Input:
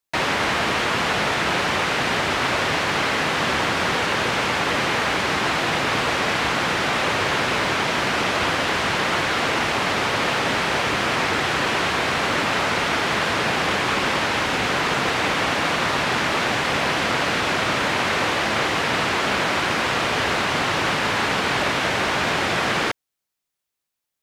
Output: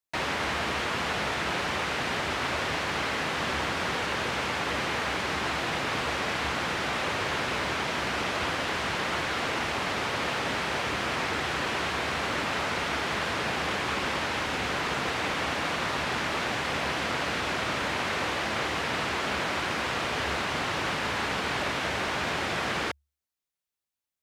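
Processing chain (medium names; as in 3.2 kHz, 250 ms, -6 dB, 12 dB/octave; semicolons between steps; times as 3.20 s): peaking EQ 71 Hz +10.5 dB 0.21 oct; trim -8 dB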